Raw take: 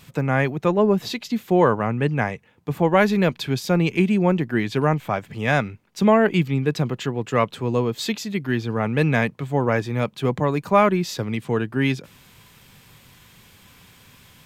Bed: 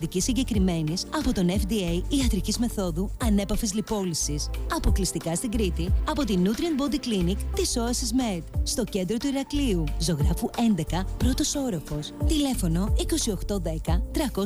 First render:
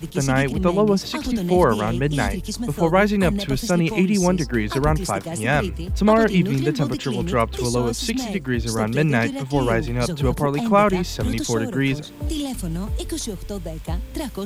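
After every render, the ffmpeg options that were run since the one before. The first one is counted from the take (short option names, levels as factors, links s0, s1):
-filter_complex "[1:a]volume=0.794[s0];[0:a][s0]amix=inputs=2:normalize=0"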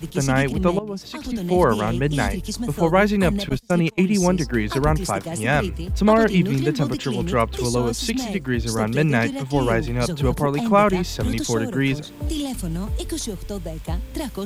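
-filter_complex "[0:a]asettb=1/sr,asplit=3[s0][s1][s2];[s0]atrim=end=3.494[s3];[s1]atrim=start=3.49:end=4.26,asetpts=PTS-STARTPTS,afade=t=in:d=0.004:c=qsin,afade=t=out:st=0.766:d=0.004:c=qsin,agate=range=0.0355:threshold=0.0794:ratio=16:release=100:detection=peak[s4];[s2]atrim=start=4.256[s5];[s3][s4]acrossfade=d=0.004:c1=hsin:c2=qsin[s6];[s6][s5]acrossfade=d=0.004:c1=qsin:c2=hsin,asplit=2[s7][s8];[s7]atrim=end=0.79,asetpts=PTS-STARTPTS,afade=t=out:st=0.786:d=0.004:c=hsin:silence=0.133352[s9];[s8]atrim=start=0.79,asetpts=PTS-STARTPTS,afade=t=in:d=0.92:silence=0.133352[s10];[s9][s10]concat=n=2:v=0:a=1"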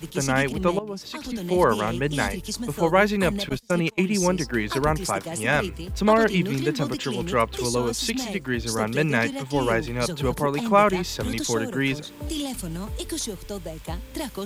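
-af "lowshelf=f=260:g=-8,bandreject=f=710:w=12"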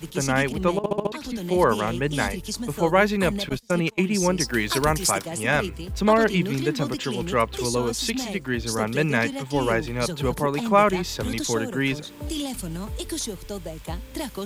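-filter_complex "[0:a]asettb=1/sr,asplit=3[s0][s1][s2];[s0]atrim=end=4.404[s3];[s1]atrim=start=4.4:end=5.22,asetpts=PTS-STARTPTS,afade=t=in:d=0.004:c=qsin,afade=t=out:st=0.816:d=0.004:c=qsin,highshelf=f=2900:g=10[s4];[s2]atrim=start=5.216[s5];[s3][s4]acrossfade=d=0.004:c1=hsin:c2=qsin[s6];[s6][s5]acrossfade=d=0.004:c1=qsin:c2=hsin,asplit=6[s7][s8][s9][s10][s11][s12];[s7]atrim=end=0.842[s13];[s8]atrim=start=0.768:end=0.842[s14];[s9]atrim=start=0.768:end=0.842[s15];[s10]atrim=start=0.768:end=0.842[s16];[s11]atrim=start=0.768:end=0.842[s17];[s12]atrim=start=1.118[s18];[s13][s14]acrossfade=d=0.004:c1=hsin:c2=hsin[s19];[s19][s15]acrossfade=d=0.004:c1=hsin:c2=hsin[s20];[s20][s16]acrossfade=d=0.004:c1=hsin:c2=hsin[s21];[s21][s17]acrossfade=d=0.004:c1=hsin:c2=hsin[s22];[s22][s18]acrossfade=d=0.004:c1=hsin:c2=hsin"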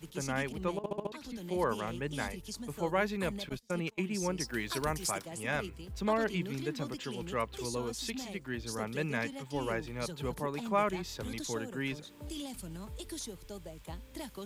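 -af "volume=0.251"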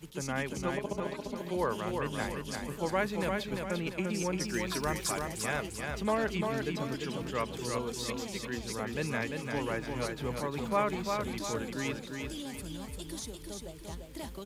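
-af "aecho=1:1:346|692|1038|1384|1730:0.596|0.256|0.11|0.0474|0.0204"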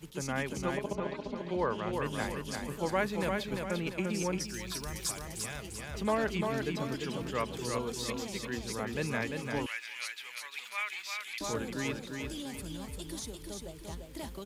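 -filter_complex "[0:a]asettb=1/sr,asplit=3[s0][s1][s2];[s0]atrim=end=0.954[s3];[s1]atrim=start=0.95:end=1.93,asetpts=PTS-STARTPTS,afade=t=in:d=0.004:c=qsin,afade=t=out:st=0.976:d=0.004:c=qsin,lowpass=4100[s4];[s2]atrim=start=1.926[s5];[s3][s4]acrossfade=d=0.004:c1=hsin:c2=qsin[s6];[s6][s5]acrossfade=d=0.004:c1=qsin:c2=hsin,asettb=1/sr,asplit=3[s7][s8][s9];[s7]atrim=end=4.384[s10];[s8]atrim=start=4.38:end=5.95,asetpts=PTS-STARTPTS,afade=t=in:d=0.004:c=qsin,afade=t=out:st=1.566:d=0.004:c=qsin,acrossover=split=130|3000[s11][s12][s13];[s12]acompressor=threshold=0.00631:ratio=3:attack=3.2:release=140:knee=2.83:detection=peak[s14];[s11][s14][s13]amix=inputs=3:normalize=0[s15];[s9]atrim=start=5.946[s16];[s10][s15]acrossfade=d=0.004:c1=hsin:c2=qsin[s17];[s17][s16]acrossfade=d=0.004:c1=qsin:c2=hsin,asettb=1/sr,asplit=3[s18][s19][s20];[s18]atrim=end=9.664[s21];[s19]atrim=start=9.66:end=11.41,asetpts=PTS-STARTPTS,afade=t=in:d=0.004:c=qsin,afade=t=out:st=1.746:d=0.004:c=qsin,highpass=f=2300:t=q:w=2.1[s22];[s20]atrim=start=11.406[s23];[s21][s22]acrossfade=d=0.004:c1=hsin:c2=qsin[s24];[s24][s23]acrossfade=d=0.004:c1=qsin:c2=hsin"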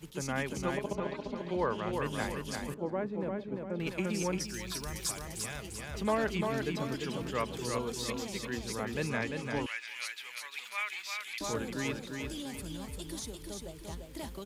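-filter_complex "[0:a]asettb=1/sr,asplit=3[s0][s1][s2];[s0]atrim=end=2.744[s3];[s1]atrim=start=2.74:end=3.8,asetpts=PTS-STARTPTS,afade=t=in:d=0.004:c=qsin,afade=t=out:st=1.056:d=0.004:c=qsin,bandpass=f=300:t=q:w=0.79[s4];[s2]atrim=start=3.796[s5];[s3][s4]acrossfade=d=0.004:c1=hsin:c2=qsin[s6];[s6][s5]acrossfade=d=0.004:c1=qsin:c2=hsin,asettb=1/sr,asplit=3[s7][s8][s9];[s7]atrim=end=9.084[s10];[s8]atrim=start=9.08:end=9.88,asetpts=PTS-STARTPTS,afade=t=in:d=0.004:c=qsin,afade=t=out:st=0.796:d=0.004:c=qsin,equalizer=f=14000:w=1.2:g=-14[s11];[s9]atrim=start=9.876[s12];[s10][s11]acrossfade=d=0.004:c1=hsin:c2=qsin[s13];[s13][s12]acrossfade=d=0.004:c1=qsin:c2=hsin"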